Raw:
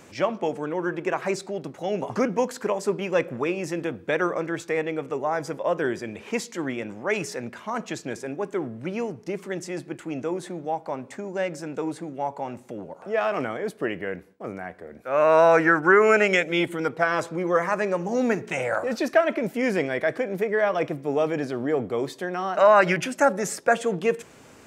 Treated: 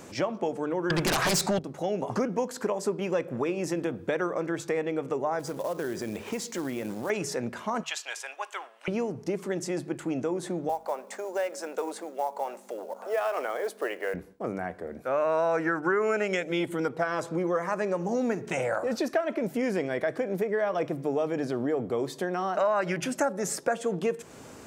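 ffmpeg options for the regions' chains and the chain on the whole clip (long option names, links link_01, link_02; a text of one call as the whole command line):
ffmpeg -i in.wav -filter_complex "[0:a]asettb=1/sr,asplit=3[link_01][link_02][link_03];[link_01]atrim=end=0.904[link_04];[link_02]atrim=start=0.9:end=1.59,asetpts=PTS-STARTPTS,afade=type=in:duration=0.004:curve=qsin,afade=type=out:start_time=0.686:duration=0.004:curve=qsin,equalizer=frequency=370:width_type=o:width=1.3:gain=-13,aeval=exprs='0.188*sin(PI/2*7.94*val(0)/0.188)':channel_layout=same[link_05];[link_03]atrim=start=1.586[link_06];[link_04][link_05]acrossfade=duration=0.004:curve1=hsin:curve2=qsin[link_07];[link_07][link_06]acrossfade=duration=0.004:curve1=qsin:curve2=hsin,asettb=1/sr,asplit=3[link_08][link_09][link_10];[link_08]atrim=end=5.394[link_11];[link_09]atrim=start=5.39:end=7.1,asetpts=PTS-STARTPTS,afade=type=in:duration=0.004:curve=qsin,afade=type=out:start_time=1.706:duration=0.004:curve=qsin,acompressor=threshold=-32dB:ratio=3:attack=3.2:release=140:knee=1:detection=peak,acrusher=bits=4:mode=log:mix=0:aa=0.000001[link_12];[link_10]atrim=start=7.096[link_13];[link_11][link_12]acrossfade=duration=0.004:curve1=hsin:curve2=qsin[link_14];[link_14][link_13]acrossfade=duration=0.004:curve1=qsin:curve2=hsin,asettb=1/sr,asplit=3[link_15][link_16][link_17];[link_15]atrim=end=7.834[link_18];[link_16]atrim=start=7.83:end=8.88,asetpts=PTS-STARTPTS,afade=type=in:duration=0.004:curve=qsin,afade=type=out:start_time=1.046:duration=0.004:curve=qsin,highpass=frequency=830:width=0.5412,highpass=frequency=830:width=1.3066,equalizer=frequency=2900:width_type=o:width=0.64:gain=10.5[link_19];[link_17]atrim=start=8.876[link_20];[link_18][link_19]acrossfade=duration=0.004:curve1=hsin:curve2=qsin[link_21];[link_21][link_20]acrossfade=duration=0.004:curve1=qsin:curve2=hsin,asettb=1/sr,asplit=3[link_22][link_23][link_24];[link_22]atrim=end=10.694[link_25];[link_23]atrim=start=10.69:end=14.14,asetpts=PTS-STARTPTS,afade=type=in:duration=0.004:curve=qsin,afade=type=out:start_time=3.446:duration=0.004:curve=qsin,highpass=frequency=440:width=0.5412,highpass=frequency=440:width=1.3066,aeval=exprs='val(0)+0.00251*(sin(2*PI*50*n/s)+sin(2*PI*2*50*n/s)/2+sin(2*PI*3*50*n/s)/3+sin(2*PI*4*50*n/s)/4+sin(2*PI*5*50*n/s)/5)':channel_layout=same,acrusher=bits=6:mode=log:mix=0:aa=0.000001[link_26];[link_24]atrim=start=14.136[link_27];[link_25][link_26]acrossfade=duration=0.004:curve1=hsin:curve2=qsin[link_28];[link_28][link_27]acrossfade=duration=0.004:curve1=qsin:curve2=hsin,equalizer=frequency=2300:width=1:gain=-5,bandreject=frequency=50:width_type=h:width=6,bandreject=frequency=100:width_type=h:width=6,bandreject=frequency=150:width_type=h:width=6,acompressor=threshold=-31dB:ratio=3,volume=4dB" out.wav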